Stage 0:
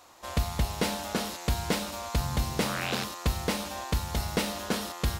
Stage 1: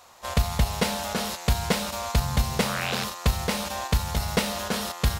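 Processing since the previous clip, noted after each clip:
parametric band 310 Hz −13 dB 0.33 octaves
in parallel at +1.5 dB: output level in coarse steps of 13 dB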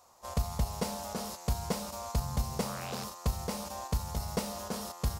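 flat-topped bell 2,400 Hz −8.5 dB
level −8 dB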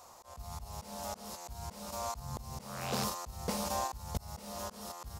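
volume swells 501 ms
level +6.5 dB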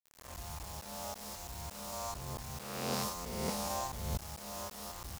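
peak hold with a rise ahead of every peak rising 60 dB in 1.15 s
bit reduction 7 bits
level −4 dB

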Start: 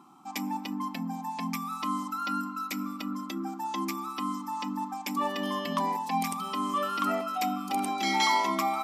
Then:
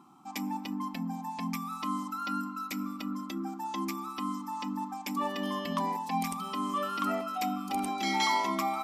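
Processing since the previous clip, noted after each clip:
low-shelf EQ 120 Hz +10 dB
level −3 dB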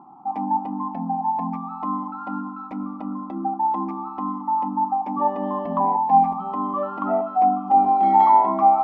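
low-pass with resonance 820 Hz, resonance Q 4.7
level +5 dB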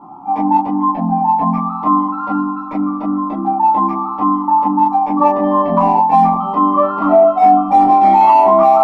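in parallel at −12 dB: hard clipping −16 dBFS, distortion −11 dB
on the sum: convolution reverb, pre-delay 3 ms, DRR −8 dB
boost into a limiter 0 dB
level −1 dB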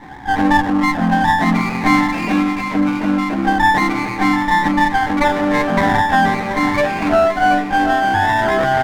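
lower of the sound and its delayed copy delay 0.35 ms
speech leveller within 4 dB 2 s
on a send: single-tap delay 731 ms −10.5 dB
on the sum: level −1 dB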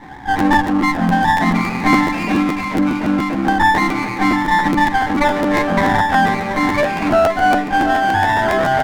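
regular buffer underruns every 0.14 s, samples 512, repeat, from 0:00.38

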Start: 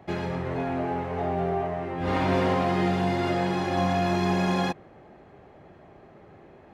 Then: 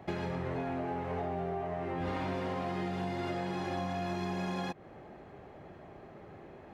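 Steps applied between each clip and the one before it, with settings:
downward compressor 10 to 1, threshold −32 dBFS, peak gain reduction 12.5 dB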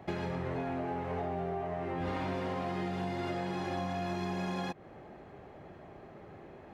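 no processing that can be heard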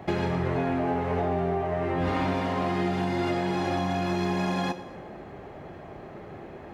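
dense smooth reverb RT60 1.4 s, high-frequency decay 0.75×, DRR 9.5 dB
level +8 dB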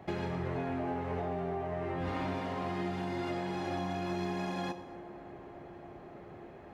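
delay with a low-pass on its return 306 ms, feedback 82%, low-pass 1,300 Hz, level −18 dB
level −8.5 dB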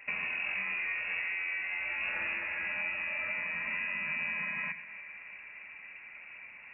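voice inversion scrambler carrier 2,700 Hz

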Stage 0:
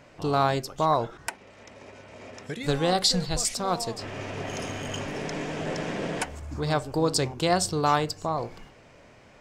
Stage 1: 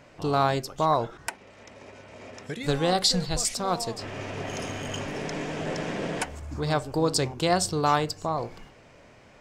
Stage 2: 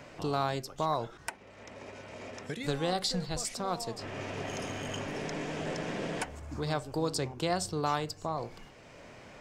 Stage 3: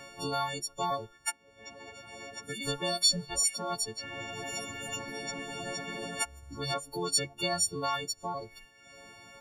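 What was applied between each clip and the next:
no processing that can be heard
multiband upward and downward compressor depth 40%; level −6.5 dB
every partial snapped to a pitch grid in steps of 4 semitones; reverb reduction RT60 1.1 s; level −2 dB

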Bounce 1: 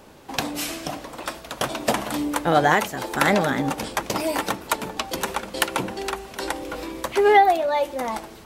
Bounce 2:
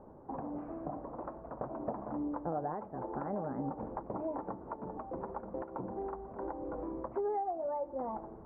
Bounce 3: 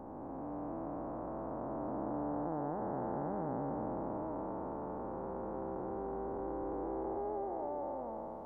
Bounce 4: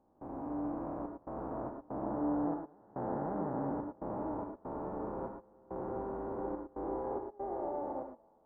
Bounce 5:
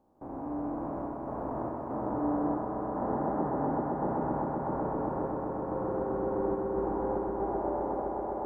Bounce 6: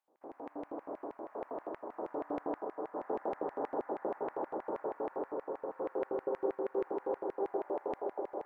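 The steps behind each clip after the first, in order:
downward compressor 4 to 1, threshold −29 dBFS, peak gain reduction 16 dB; inverse Chebyshev low-pass filter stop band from 3,400 Hz, stop band 60 dB; level −5 dB
spectrum smeared in time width 845 ms; level +3.5 dB
gate pattern ".xxxx.xx.xxx." 71 BPM −24 dB; reverb whose tail is shaped and stops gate 130 ms rising, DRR 3 dB
echo that builds up and dies away 128 ms, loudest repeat 5, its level −7 dB; level +3 dB
auto-filter high-pass square 6.3 Hz 420–2,000 Hz; level −7 dB

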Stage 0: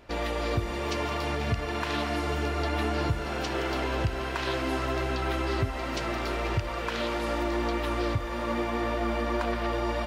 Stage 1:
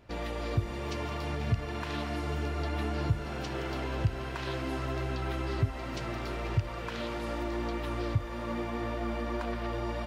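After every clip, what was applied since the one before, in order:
parametric band 120 Hz +9 dB 1.6 octaves
level −7 dB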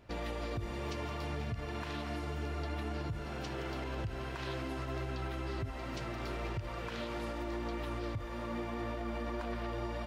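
speech leveller 2 s
brickwall limiter −26 dBFS, peak gain reduction 10.5 dB
level −3.5 dB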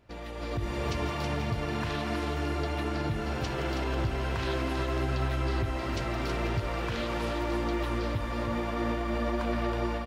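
automatic gain control gain up to 10 dB
single-tap delay 322 ms −5.5 dB
level −3 dB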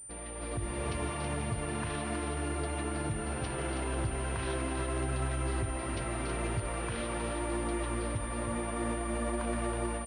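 switching amplifier with a slow clock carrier 9,100 Hz
level −3.5 dB

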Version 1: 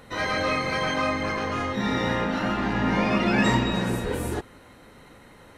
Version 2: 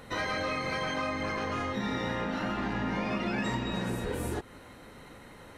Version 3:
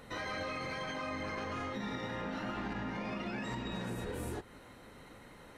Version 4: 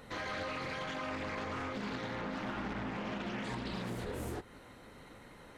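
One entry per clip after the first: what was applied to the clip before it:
downward compressor 4 to 1, threshold −30 dBFS, peak gain reduction 11.5 dB
brickwall limiter −26 dBFS, peak gain reduction 6 dB; flanger 1.1 Hz, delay 4.2 ms, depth 7.5 ms, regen −74%
highs frequency-modulated by the lows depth 0.43 ms

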